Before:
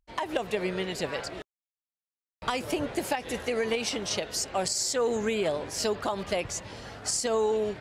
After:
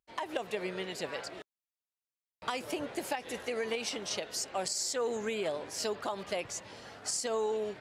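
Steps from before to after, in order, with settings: high-pass 240 Hz 6 dB/octave; trim -5 dB

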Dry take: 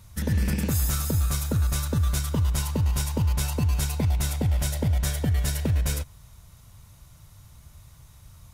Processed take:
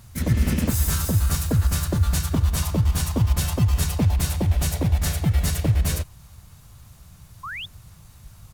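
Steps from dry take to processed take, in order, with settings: harmony voices -5 st -6 dB, +3 st -1 dB; painted sound rise, 7.43–7.66 s, 1–3.7 kHz -33 dBFS

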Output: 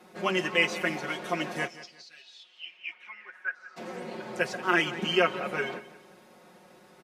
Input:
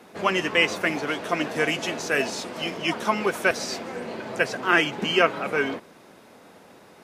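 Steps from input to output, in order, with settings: 1.66–3.76 s: band-pass filter 5.7 kHz -> 1.3 kHz, Q 9.6; comb 5.5 ms, depth 91%; feedback delay 178 ms, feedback 31%, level -16 dB; trim -7.5 dB

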